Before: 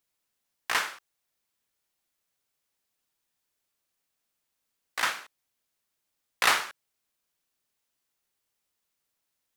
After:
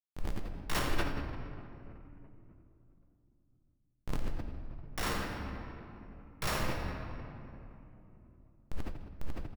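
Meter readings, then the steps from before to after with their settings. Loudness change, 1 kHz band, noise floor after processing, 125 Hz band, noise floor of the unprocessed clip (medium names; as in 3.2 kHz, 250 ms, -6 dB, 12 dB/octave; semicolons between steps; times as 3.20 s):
-12.0 dB, -7.0 dB, -73 dBFS, no reading, -82 dBFS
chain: sorted samples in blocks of 8 samples; wind noise 110 Hz -49 dBFS; bass shelf 400 Hz -6 dB; band-stop 600 Hz, Q 12; de-hum 79.37 Hz, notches 17; compression 4:1, threshold -41 dBFS, peak gain reduction 19.5 dB; Schmitt trigger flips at -40.5 dBFS; echo from a far wall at 15 m, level -7 dB; simulated room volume 130 m³, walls hard, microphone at 0.48 m; decay stretcher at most 65 dB/s; trim +16 dB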